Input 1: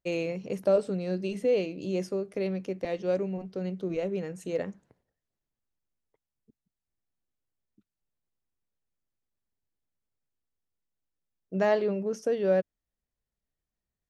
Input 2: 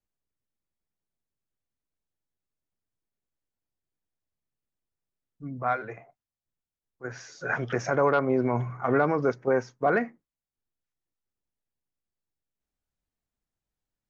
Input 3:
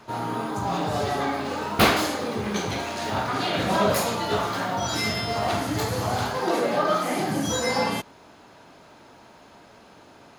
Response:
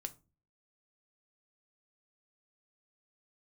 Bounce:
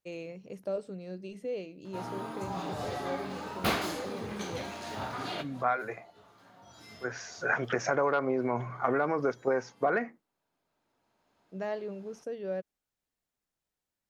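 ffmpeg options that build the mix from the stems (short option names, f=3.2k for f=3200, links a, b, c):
-filter_complex "[0:a]volume=-10.5dB[a];[1:a]acompressor=threshold=-25dB:ratio=6,highpass=f=280:p=1,volume=2.5dB,asplit=2[b][c];[2:a]adelay=1850,volume=-10.5dB[d];[c]apad=whole_len=539549[e];[d][e]sidechaincompress=threshold=-51dB:ratio=12:attack=8.3:release=1250[f];[a][b][f]amix=inputs=3:normalize=0"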